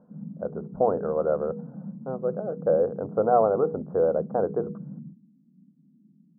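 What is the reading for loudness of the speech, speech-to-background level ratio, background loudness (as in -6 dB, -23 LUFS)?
-26.0 LUFS, 13.5 dB, -39.5 LUFS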